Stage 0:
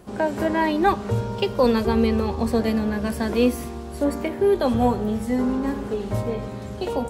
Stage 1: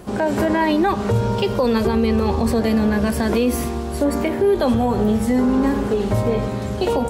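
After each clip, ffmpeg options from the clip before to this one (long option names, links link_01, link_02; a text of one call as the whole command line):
ffmpeg -i in.wav -af "alimiter=limit=-18.5dB:level=0:latency=1:release=75,volume=8.5dB" out.wav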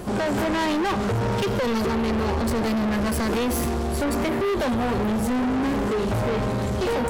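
ffmpeg -i in.wav -af "asoftclip=type=tanh:threshold=-26.5dB,volume=5dB" out.wav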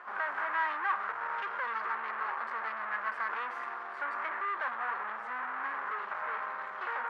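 ffmpeg -i in.wav -af "asuperpass=centerf=1400:order=4:qfactor=1.6" out.wav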